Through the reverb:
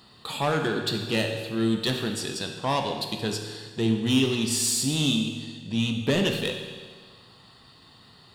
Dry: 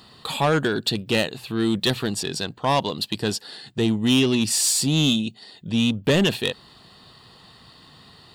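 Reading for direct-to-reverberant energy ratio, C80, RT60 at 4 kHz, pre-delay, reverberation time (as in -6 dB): 3.0 dB, 7.0 dB, 1.5 s, 13 ms, 1.6 s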